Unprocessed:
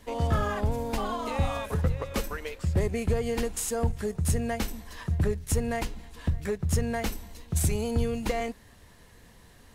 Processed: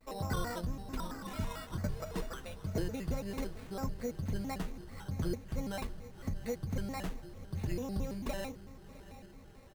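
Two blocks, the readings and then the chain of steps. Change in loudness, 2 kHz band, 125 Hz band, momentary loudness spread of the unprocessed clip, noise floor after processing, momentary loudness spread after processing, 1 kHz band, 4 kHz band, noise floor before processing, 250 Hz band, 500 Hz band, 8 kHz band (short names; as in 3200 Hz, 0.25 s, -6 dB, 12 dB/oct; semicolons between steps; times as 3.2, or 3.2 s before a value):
-10.0 dB, -10.0 dB, -10.0 dB, 7 LU, -54 dBFS, 11 LU, -10.0 dB, -8.0 dB, -54 dBFS, -7.0 dB, -11.0 dB, -15.5 dB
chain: spectral gain 0.61–1.81, 400–1100 Hz -9 dB; LPF 2800 Hz; comb 5.3 ms, depth 46%; flange 1.8 Hz, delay 7.4 ms, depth 3.4 ms, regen -62%; diffused feedback echo 0.71 s, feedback 61%, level -15 dB; careless resampling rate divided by 8×, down filtered, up hold; shaped vibrato square 4.5 Hz, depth 250 cents; gain -4.5 dB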